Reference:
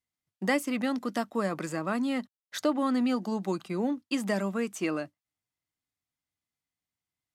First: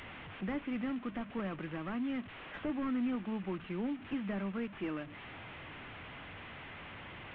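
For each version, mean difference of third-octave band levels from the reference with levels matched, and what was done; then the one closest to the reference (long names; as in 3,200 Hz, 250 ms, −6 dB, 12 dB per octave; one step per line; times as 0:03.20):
9.0 dB: linear delta modulator 16 kbit/s, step −38 dBFS
dynamic equaliser 640 Hz, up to −7 dB, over −44 dBFS, Q 0.8
in parallel at −6.5 dB: soft clipping −33 dBFS, distortion −10 dB
on the sum: level −6.5 dB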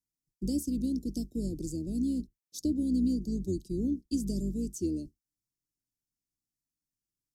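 12.0 dB: sub-octave generator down 2 octaves, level −2 dB
elliptic band-stop filter 350–5,200 Hz, stop band 70 dB
parametric band 66 Hz −12 dB 0.47 octaves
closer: first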